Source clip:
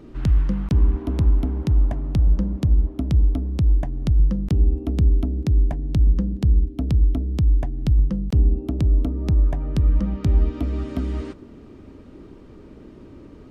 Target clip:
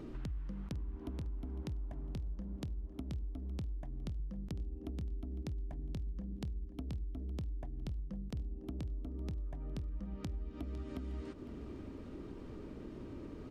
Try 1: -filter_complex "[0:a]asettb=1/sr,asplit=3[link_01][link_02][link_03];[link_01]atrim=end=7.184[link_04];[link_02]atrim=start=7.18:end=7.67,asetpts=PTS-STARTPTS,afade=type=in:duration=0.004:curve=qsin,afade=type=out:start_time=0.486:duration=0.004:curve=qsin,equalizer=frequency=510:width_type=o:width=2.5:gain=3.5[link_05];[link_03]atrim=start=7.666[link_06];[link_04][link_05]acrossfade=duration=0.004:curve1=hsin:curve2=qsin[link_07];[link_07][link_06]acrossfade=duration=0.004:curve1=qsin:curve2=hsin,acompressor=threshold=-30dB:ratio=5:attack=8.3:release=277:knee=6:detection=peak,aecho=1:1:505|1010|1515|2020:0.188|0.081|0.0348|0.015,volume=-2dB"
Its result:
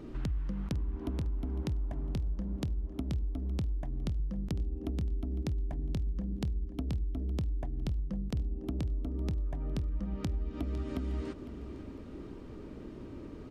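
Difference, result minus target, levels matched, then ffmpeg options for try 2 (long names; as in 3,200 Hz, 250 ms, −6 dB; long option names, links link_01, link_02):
downward compressor: peak gain reduction −7 dB
-filter_complex "[0:a]asettb=1/sr,asplit=3[link_01][link_02][link_03];[link_01]atrim=end=7.184[link_04];[link_02]atrim=start=7.18:end=7.67,asetpts=PTS-STARTPTS,afade=type=in:duration=0.004:curve=qsin,afade=type=out:start_time=0.486:duration=0.004:curve=qsin,equalizer=frequency=510:width_type=o:width=2.5:gain=3.5[link_05];[link_03]atrim=start=7.666[link_06];[link_04][link_05]acrossfade=duration=0.004:curve1=hsin:curve2=qsin[link_07];[link_07][link_06]acrossfade=duration=0.004:curve1=qsin:curve2=hsin,acompressor=threshold=-39dB:ratio=5:attack=8.3:release=277:knee=6:detection=peak,aecho=1:1:505|1010|1515|2020:0.188|0.081|0.0348|0.015,volume=-2dB"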